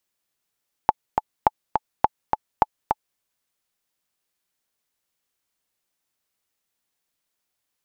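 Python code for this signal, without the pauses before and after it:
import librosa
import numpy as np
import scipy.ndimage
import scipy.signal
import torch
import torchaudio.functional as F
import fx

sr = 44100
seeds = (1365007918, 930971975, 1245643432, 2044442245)

y = fx.click_track(sr, bpm=208, beats=2, bars=4, hz=862.0, accent_db=4.5, level_db=-1.5)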